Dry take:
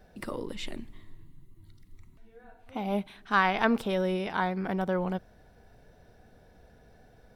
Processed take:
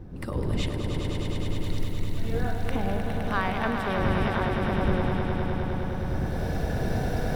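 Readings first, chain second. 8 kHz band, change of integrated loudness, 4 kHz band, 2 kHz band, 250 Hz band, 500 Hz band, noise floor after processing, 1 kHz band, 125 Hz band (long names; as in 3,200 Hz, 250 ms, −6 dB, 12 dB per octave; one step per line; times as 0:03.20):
can't be measured, +1.0 dB, +3.5 dB, +0.5 dB, +4.0 dB, +3.0 dB, −31 dBFS, +1.0 dB, +12.5 dB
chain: camcorder AGC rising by 21 dB per second
wind on the microphone 160 Hz −29 dBFS
on a send: echo that builds up and dies away 103 ms, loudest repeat 5, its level −7.5 dB
on the sum: level −5 dB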